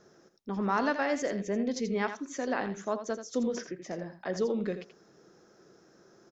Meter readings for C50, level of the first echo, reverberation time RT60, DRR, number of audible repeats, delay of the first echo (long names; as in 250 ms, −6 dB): no reverb audible, −10.0 dB, no reverb audible, no reverb audible, 1, 83 ms